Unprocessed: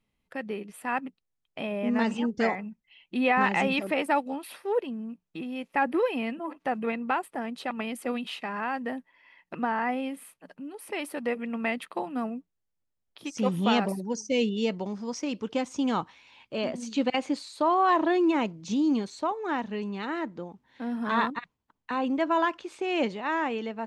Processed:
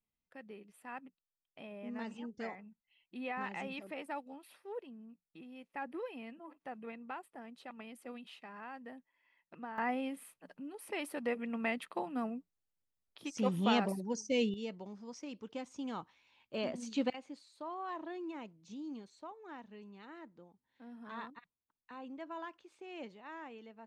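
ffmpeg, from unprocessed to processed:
ffmpeg -i in.wav -af "asetnsamples=nb_out_samples=441:pad=0,asendcmd='9.78 volume volume -6dB;14.54 volume volume -14dB;16.54 volume volume -7dB;17.13 volume volume -19.5dB',volume=-16.5dB" out.wav

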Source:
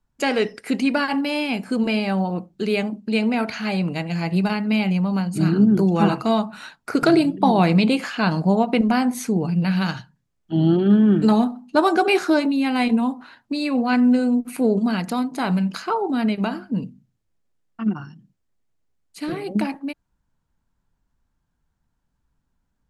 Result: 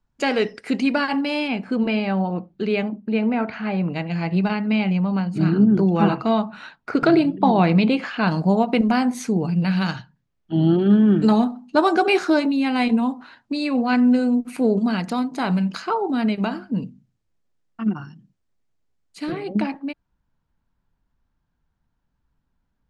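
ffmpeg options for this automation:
ffmpeg -i in.wav -af "asetnsamples=nb_out_samples=441:pad=0,asendcmd='1.48 lowpass f 3300;2.96 lowpass f 2000;3.9 lowpass f 3600;8.28 lowpass f 8100;9.96 lowpass f 4700;10.82 lowpass f 7700;19.31 lowpass f 4600',lowpass=6500" out.wav

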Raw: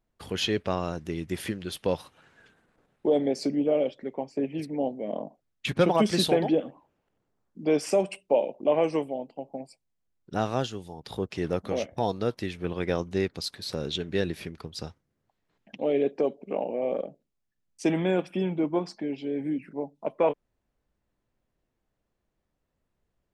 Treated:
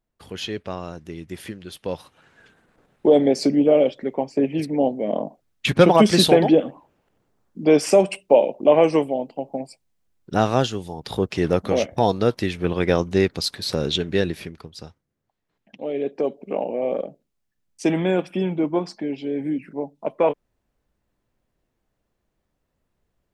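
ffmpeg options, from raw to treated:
ffmpeg -i in.wav -af "volume=15dB,afade=type=in:start_time=1.83:duration=1.24:silence=0.281838,afade=type=out:start_time=13.92:duration=0.81:silence=0.298538,afade=type=in:start_time=15.94:duration=0.47:silence=0.473151" out.wav

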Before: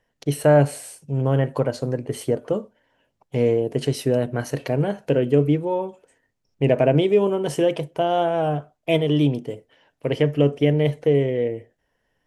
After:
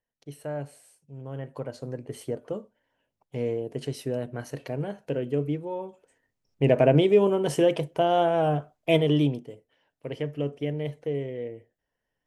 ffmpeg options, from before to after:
ffmpeg -i in.wav -af "volume=-1.5dB,afade=type=in:start_time=1.25:duration=0.75:silence=0.354813,afade=type=in:start_time=5.75:duration=1.1:silence=0.398107,afade=type=out:start_time=9.07:duration=0.41:silence=0.316228" out.wav

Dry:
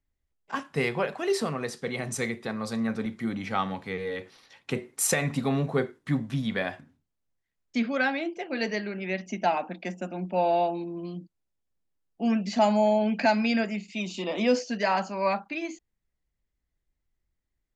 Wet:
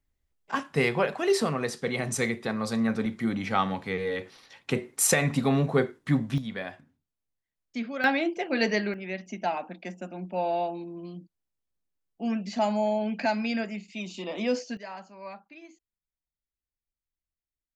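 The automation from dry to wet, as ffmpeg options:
ffmpeg -i in.wav -af "asetnsamples=nb_out_samples=441:pad=0,asendcmd='6.38 volume volume -6dB;8.04 volume volume 4dB;8.94 volume volume -4dB;14.77 volume volume -15.5dB',volume=2.5dB" out.wav

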